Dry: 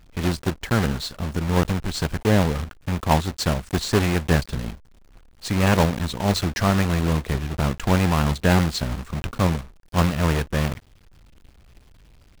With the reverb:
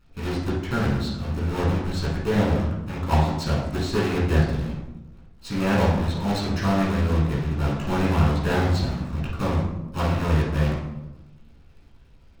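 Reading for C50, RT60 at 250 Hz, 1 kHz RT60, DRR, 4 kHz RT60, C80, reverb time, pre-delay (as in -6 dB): 1.5 dB, 1.5 s, 0.95 s, -7.5 dB, 0.60 s, 5.5 dB, 1.0 s, 14 ms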